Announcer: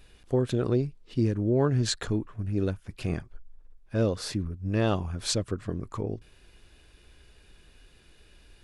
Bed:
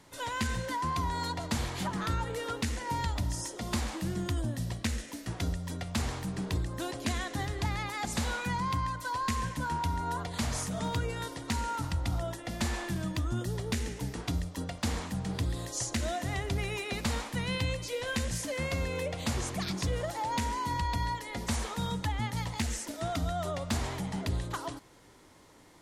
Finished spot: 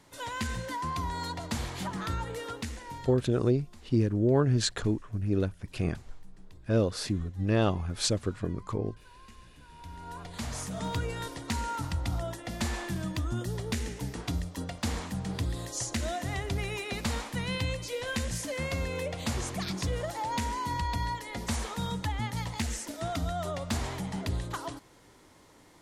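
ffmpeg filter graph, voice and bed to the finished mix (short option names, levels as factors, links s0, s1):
-filter_complex "[0:a]adelay=2750,volume=1[s0];[1:a]volume=11.9,afade=t=out:st=2.34:d=0.96:silence=0.0841395,afade=t=in:st=9.71:d=1.27:silence=0.0707946[s1];[s0][s1]amix=inputs=2:normalize=0"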